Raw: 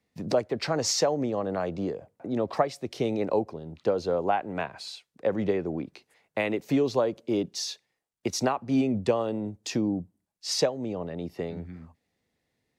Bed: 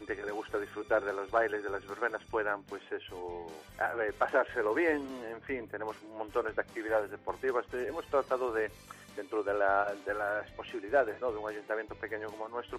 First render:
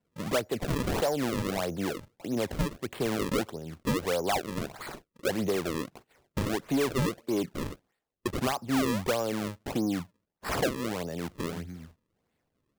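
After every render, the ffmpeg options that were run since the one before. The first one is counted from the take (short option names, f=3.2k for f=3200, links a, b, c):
-af "acrusher=samples=34:mix=1:aa=0.000001:lfo=1:lforange=54.4:lforate=1.6,asoftclip=type=tanh:threshold=-21dB"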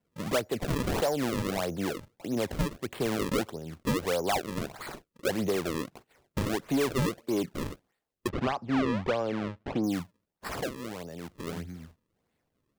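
-filter_complex "[0:a]asettb=1/sr,asplit=3[a][b][c];[a]atrim=end=8.294[d];[b]atrim=start=8.29:end=9.84,asetpts=PTS-STARTPTS,afade=t=in:d=0.004:c=qsin,afade=t=out:st=1.546:d=0.004:c=qsin,lowpass=3k[e];[c]atrim=start=9.836[f];[d][e]acrossfade=d=0.004:c1=hsin:c2=qsin[g];[g][f]acrossfade=d=0.004:c1=qsin:c2=hsin,asplit=3[h][i][j];[h]atrim=end=10.482[k];[i]atrim=start=10.478:end=11.472,asetpts=PTS-STARTPTS,volume=-6dB[l];[j]atrim=start=11.468[m];[k][l]acrossfade=d=0.004:c1=hsin:c2=hsin[n];[n][m]acrossfade=d=0.004:c1=hsin:c2=hsin"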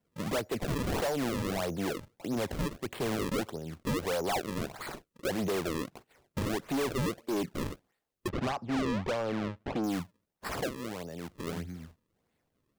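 -af "volume=28dB,asoftclip=hard,volume=-28dB"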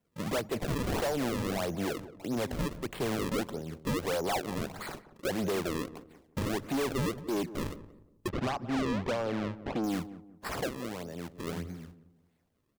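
-filter_complex "[0:a]asplit=2[a][b];[b]adelay=178,lowpass=f=820:p=1,volume=-13dB,asplit=2[c][d];[d]adelay=178,lowpass=f=820:p=1,volume=0.37,asplit=2[e][f];[f]adelay=178,lowpass=f=820:p=1,volume=0.37,asplit=2[g][h];[h]adelay=178,lowpass=f=820:p=1,volume=0.37[i];[a][c][e][g][i]amix=inputs=5:normalize=0"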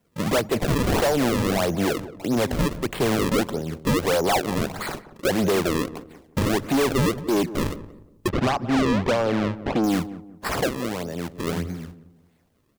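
-af "volume=10dB"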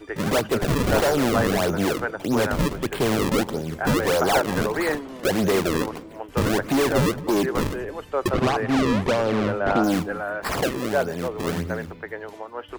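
-filter_complex "[1:a]volume=4dB[a];[0:a][a]amix=inputs=2:normalize=0"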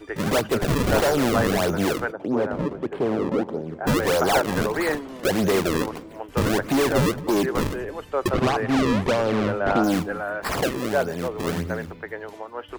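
-filter_complex "[0:a]asplit=3[a][b][c];[a]afade=t=out:st=2.11:d=0.02[d];[b]bandpass=f=410:t=q:w=0.65,afade=t=in:st=2.11:d=0.02,afade=t=out:st=3.86:d=0.02[e];[c]afade=t=in:st=3.86:d=0.02[f];[d][e][f]amix=inputs=3:normalize=0"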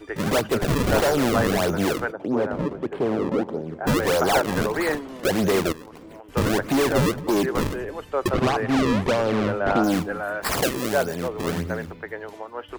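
-filter_complex "[0:a]asettb=1/sr,asplit=3[a][b][c];[a]atrim=end=5.724[d];[b]atrim=start=5.72:end=6.32,asetpts=PTS-STARTPTS,afade=t=in:d=0.004:c=qsin,afade=t=out:st=0.596:d=0.004:c=qsin,acompressor=threshold=-37dB:ratio=16:attack=3.2:release=140:knee=1:detection=peak[e];[c]atrim=start=6.316[f];[d][e]acrossfade=d=0.004:c1=hsin:c2=qsin[g];[g][f]acrossfade=d=0.004:c1=qsin:c2=hsin,asettb=1/sr,asplit=3[h][i][j];[h]atrim=end=10.234[k];[i]atrim=start=10.23:end=11.16,asetpts=PTS-STARTPTS,afade=t=in:d=0.004:c=qsin,afade=t=out:st=0.926:d=0.004:c=qsin,highshelf=f=4.3k:g=8[l];[j]atrim=start=11.156[m];[k][l]acrossfade=d=0.004:c1=hsin:c2=qsin[n];[n][m]acrossfade=d=0.004:c1=qsin:c2=hsin"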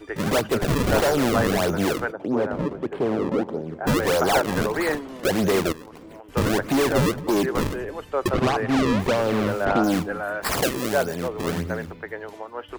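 -filter_complex "[0:a]asettb=1/sr,asplit=3[a][b][c];[a]atrim=end=8.994[d];[b]atrim=start=8.99:end=9.65,asetpts=PTS-STARTPTS,afade=t=in:d=0.004:c=qsin,afade=t=out:st=0.656:d=0.004:c=qsin,aeval=exprs='val(0)*gte(abs(val(0)),0.0211)':c=same[e];[c]atrim=start=9.646[f];[d][e]acrossfade=d=0.004:c1=hsin:c2=qsin[g];[g][f]acrossfade=d=0.004:c1=qsin:c2=hsin"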